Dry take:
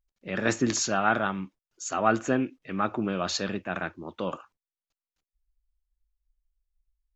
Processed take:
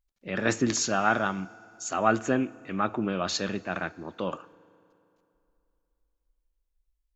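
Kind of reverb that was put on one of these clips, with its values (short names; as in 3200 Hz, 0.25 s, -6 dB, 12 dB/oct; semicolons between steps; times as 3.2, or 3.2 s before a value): FDN reverb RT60 2.8 s, high-frequency decay 0.75×, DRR 20 dB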